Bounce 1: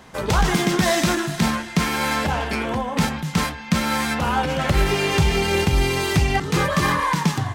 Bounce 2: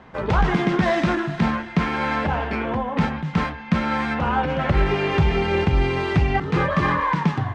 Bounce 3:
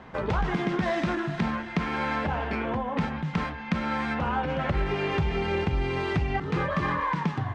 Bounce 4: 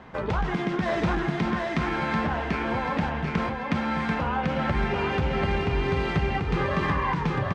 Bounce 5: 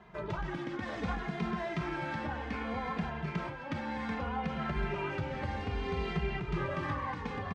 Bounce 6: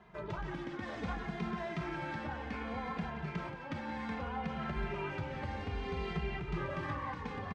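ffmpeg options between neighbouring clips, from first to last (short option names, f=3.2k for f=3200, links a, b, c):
-af "lowpass=2.3k"
-af "acompressor=threshold=-29dB:ratio=2"
-af "aecho=1:1:739|1478|2217|2956|3695:0.708|0.269|0.102|0.0388|0.0148"
-filter_complex "[0:a]asplit=2[a][b];[b]adelay=2.5,afreqshift=-0.64[c];[a][c]amix=inputs=2:normalize=1,volume=-6.5dB"
-af "aecho=1:1:177:0.237,volume=-3.5dB"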